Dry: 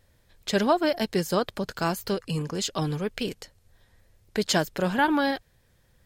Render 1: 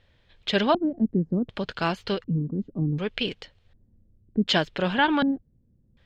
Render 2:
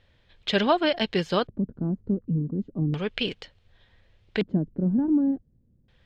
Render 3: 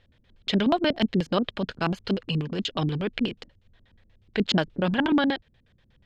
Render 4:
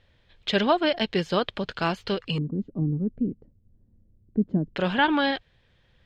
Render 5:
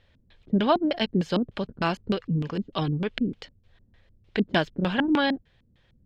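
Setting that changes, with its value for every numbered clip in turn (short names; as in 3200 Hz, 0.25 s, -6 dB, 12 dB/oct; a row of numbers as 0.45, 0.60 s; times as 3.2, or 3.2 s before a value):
LFO low-pass, rate: 0.67, 0.34, 8.3, 0.21, 3.3 Hz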